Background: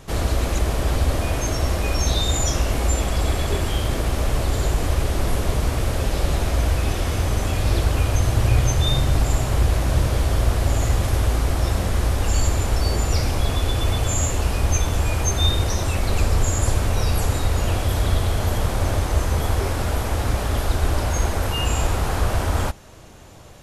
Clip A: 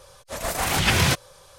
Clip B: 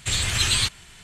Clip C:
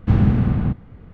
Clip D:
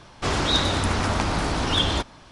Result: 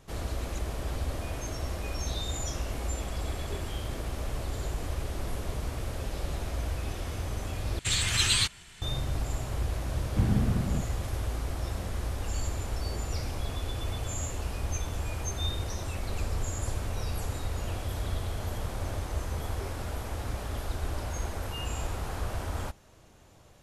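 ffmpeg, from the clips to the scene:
ffmpeg -i bed.wav -i cue0.wav -i cue1.wav -i cue2.wav -filter_complex "[0:a]volume=-12.5dB,asplit=2[link_01][link_02];[link_01]atrim=end=7.794[link_03];[2:a]atrim=end=1.03,asetpts=PTS-STARTPTS,volume=-3.5dB[link_04];[link_02]atrim=start=8.816[link_05];[3:a]atrim=end=1.13,asetpts=PTS-STARTPTS,volume=-10.5dB,afade=type=in:duration=0.004:curve=hsin,afade=type=out:start_time=1.126:duration=0.004:curve=hsin,adelay=10090[link_06];[link_03][link_04]acrossfade=duration=0.004:curve1=hsin:curve2=hsin[link_07];[link_07][link_05]acrossfade=duration=0.004:curve1=hsin:curve2=hsin[link_08];[link_08][link_06]amix=inputs=2:normalize=0" out.wav

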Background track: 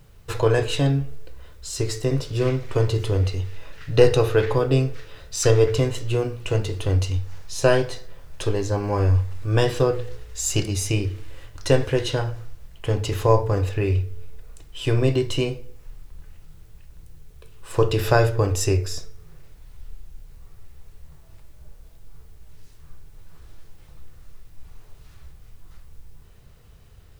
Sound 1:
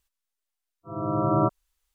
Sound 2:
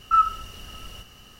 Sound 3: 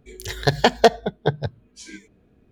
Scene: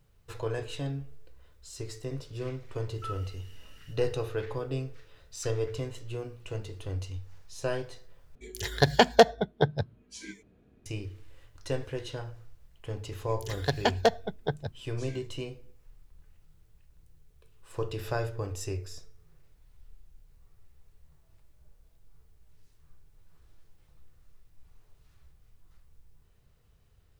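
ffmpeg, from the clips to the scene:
ffmpeg -i bed.wav -i cue0.wav -i cue1.wav -i cue2.wav -filter_complex "[3:a]asplit=2[link_01][link_02];[0:a]volume=-14dB[link_03];[2:a]asuperstop=centerf=750:order=8:qfactor=0.73[link_04];[link_03]asplit=2[link_05][link_06];[link_05]atrim=end=8.354[link_07];[link_01]atrim=end=2.51,asetpts=PTS-STARTPTS,volume=-3.5dB[link_08];[link_06]atrim=start=10.856[link_09];[link_04]atrim=end=1.39,asetpts=PTS-STARTPTS,volume=-15dB,afade=type=in:duration=0.004:curve=hsin,afade=type=out:start_time=1.386:duration=0.004:curve=hsin,adelay=2910[link_10];[link_02]atrim=end=2.51,asetpts=PTS-STARTPTS,volume=-9.5dB,afade=type=in:duration=0.004:curve=hsin,afade=type=out:start_time=2.506:duration=0.004:curve=hsin,adelay=13210[link_11];[link_07][link_08]acrossfade=duration=0.004:curve1=hsin:curve2=hsin[link_12];[link_12][link_09]acrossfade=duration=0.004:curve1=hsin:curve2=hsin[link_13];[link_13][link_10][link_11]amix=inputs=3:normalize=0" out.wav

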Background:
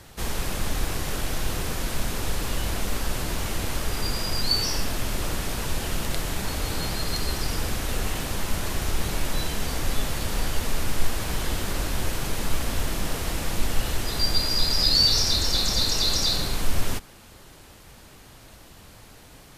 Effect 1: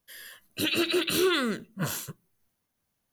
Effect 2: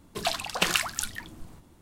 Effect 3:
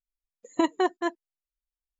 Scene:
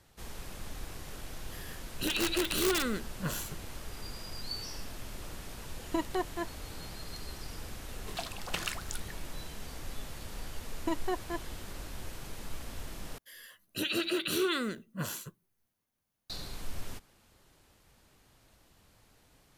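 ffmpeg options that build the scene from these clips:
ffmpeg -i bed.wav -i cue0.wav -i cue1.wav -i cue2.wav -filter_complex "[1:a]asplit=2[link_01][link_02];[3:a]asplit=2[link_03][link_04];[0:a]volume=-15.5dB[link_05];[link_01]aeval=exprs='(mod(7.08*val(0)+1,2)-1)/7.08':channel_layout=same[link_06];[link_05]asplit=2[link_07][link_08];[link_07]atrim=end=13.184[link_09];[link_02]atrim=end=3.12,asetpts=PTS-STARTPTS,volume=-5.5dB[link_10];[link_08]atrim=start=16.296[link_11];[link_06]atrim=end=3.12,asetpts=PTS-STARTPTS,volume=-4.5dB,afade=type=in:duration=0.004:curve=hsin,afade=type=out:start_time=3.116:duration=0.004:curve=hsin,adelay=1430[link_12];[link_03]atrim=end=1.99,asetpts=PTS-STARTPTS,volume=-8.5dB,afade=type=in:duration=0.004:curve=hsin,afade=type=out:start_time=1.986:duration=0.004:curve=hsin,adelay=5350[link_13];[2:a]atrim=end=1.81,asetpts=PTS-STARTPTS,volume=-11dB,afade=type=in:duration=0.004:curve=hsin,afade=type=out:start_time=1.806:duration=0.004:curve=hsin,adelay=7920[link_14];[link_04]atrim=end=1.99,asetpts=PTS-STARTPTS,volume=-9.5dB,afade=type=in:duration=0.004:curve=hsin,afade=type=out:start_time=1.986:duration=0.004:curve=hsin,adelay=10280[link_15];[link_09][link_10]acrossfade=duration=0.004:curve1=hsin:curve2=hsin[link_16];[link_16][link_11]acrossfade=duration=0.004:curve1=hsin:curve2=hsin[link_17];[link_17][link_12][link_13][link_14][link_15]amix=inputs=5:normalize=0" out.wav

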